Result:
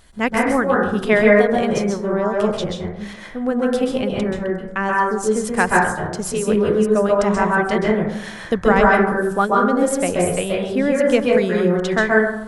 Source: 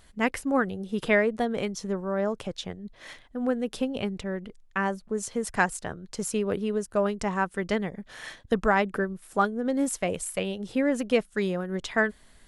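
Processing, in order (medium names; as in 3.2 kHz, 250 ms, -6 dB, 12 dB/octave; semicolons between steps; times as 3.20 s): plate-style reverb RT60 0.79 s, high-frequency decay 0.3×, pre-delay 120 ms, DRR -3 dB; trim +5 dB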